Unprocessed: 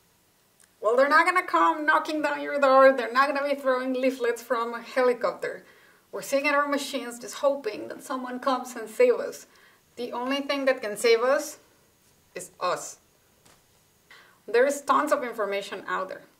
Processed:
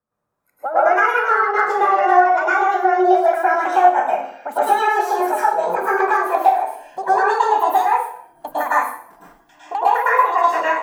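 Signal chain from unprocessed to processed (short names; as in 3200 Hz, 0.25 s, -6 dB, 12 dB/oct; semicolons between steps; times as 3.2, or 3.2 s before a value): speed glide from 128% -> 175%; resonant high shelf 1900 Hz -13.5 dB, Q 1.5; compressor 8:1, threshold -30 dBFS, peak gain reduction 18 dB; spectral noise reduction 18 dB; AGC gain up to 12 dB; hard clip -9.5 dBFS, distortion -36 dB; reverb RT60 0.55 s, pre-delay 0.101 s, DRR -10 dB; gain -4 dB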